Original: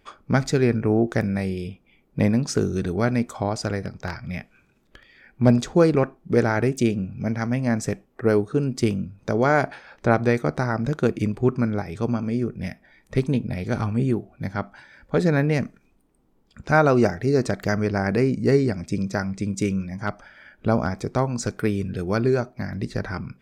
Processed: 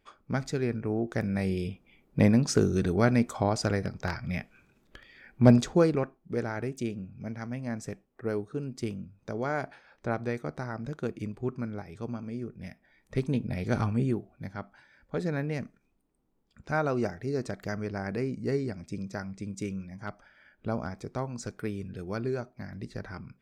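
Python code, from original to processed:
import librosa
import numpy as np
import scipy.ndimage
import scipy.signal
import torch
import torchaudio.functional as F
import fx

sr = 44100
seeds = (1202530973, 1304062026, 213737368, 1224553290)

y = fx.gain(x, sr, db=fx.line((1.03, -10.0), (1.55, -1.5), (5.56, -1.5), (6.2, -12.0), (12.62, -12.0), (13.78, -2.5), (14.54, -11.0)))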